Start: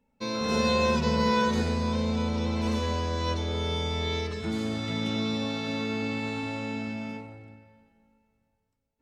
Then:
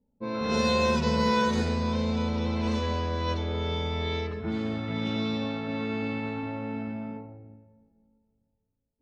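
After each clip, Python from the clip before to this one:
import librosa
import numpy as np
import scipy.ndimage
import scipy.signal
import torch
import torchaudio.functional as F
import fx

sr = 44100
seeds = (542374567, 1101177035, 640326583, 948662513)

y = fx.env_lowpass(x, sr, base_hz=480.0, full_db=-20.5)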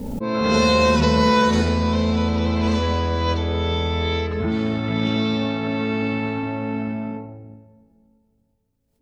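y = fx.pre_swell(x, sr, db_per_s=26.0)
y = F.gain(torch.from_numpy(y), 7.5).numpy()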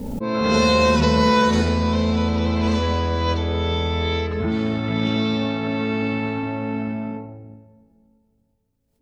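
y = x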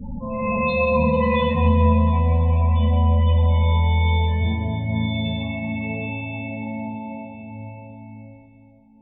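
y = fx.fixed_phaser(x, sr, hz=1400.0, stages=6)
y = fx.spec_topn(y, sr, count=16)
y = fx.rev_plate(y, sr, seeds[0], rt60_s=4.8, hf_ratio=0.75, predelay_ms=0, drr_db=0.5)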